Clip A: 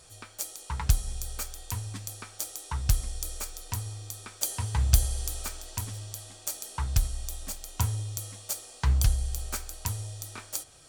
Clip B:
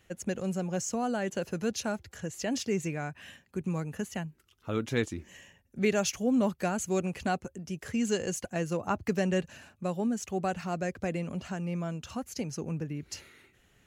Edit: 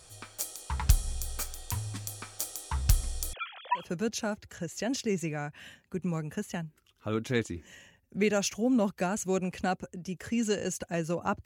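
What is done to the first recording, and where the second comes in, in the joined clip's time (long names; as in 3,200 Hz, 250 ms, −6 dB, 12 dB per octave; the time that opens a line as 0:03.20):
clip A
0:03.33–0:03.92: three sine waves on the formant tracks
0:03.83: continue with clip B from 0:01.45, crossfade 0.18 s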